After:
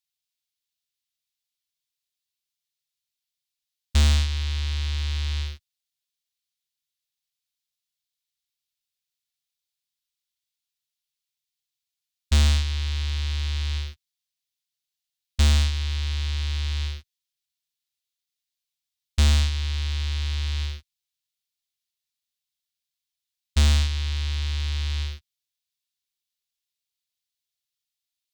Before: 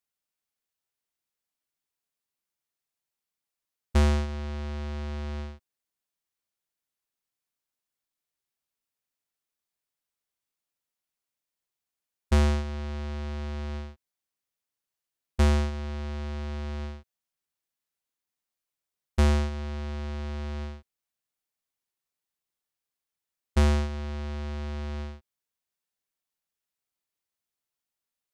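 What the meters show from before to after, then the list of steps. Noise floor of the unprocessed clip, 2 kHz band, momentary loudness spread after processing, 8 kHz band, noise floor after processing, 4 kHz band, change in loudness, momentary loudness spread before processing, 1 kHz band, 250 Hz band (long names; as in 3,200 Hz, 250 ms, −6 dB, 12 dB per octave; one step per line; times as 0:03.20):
below −85 dBFS, +4.5 dB, 12 LU, +10.5 dB, below −85 dBFS, +13.0 dB, +4.5 dB, 14 LU, −3.5 dB, −5.5 dB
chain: drawn EQ curve 150 Hz 0 dB, 210 Hz −18 dB, 400 Hz −28 dB, 3,700 Hz +11 dB, 8,700 Hz +4 dB
leveller curve on the samples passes 2
in parallel at −8.5 dB: asymmetric clip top −35 dBFS
on the sum: level −2 dB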